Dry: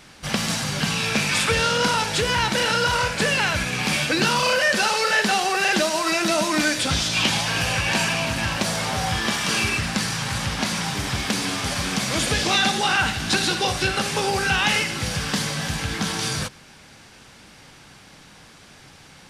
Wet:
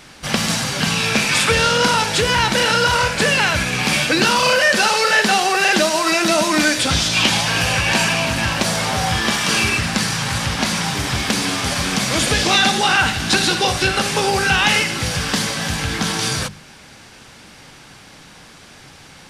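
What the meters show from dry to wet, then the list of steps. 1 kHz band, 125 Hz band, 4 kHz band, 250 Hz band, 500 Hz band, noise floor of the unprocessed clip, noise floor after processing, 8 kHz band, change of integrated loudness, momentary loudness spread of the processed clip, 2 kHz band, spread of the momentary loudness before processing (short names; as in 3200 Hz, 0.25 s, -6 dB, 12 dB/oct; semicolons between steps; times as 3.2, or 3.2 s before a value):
+5.0 dB, +4.0 dB, +5.0 dB, +4.5 dB, +5.0 dB, -48 dBFS, -43 dBFS, +5.0 dB, +5.0 dB, 6 LU, +5.0 dB, 6 LU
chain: notches 50/100/150/200 Hz; gain +5 dB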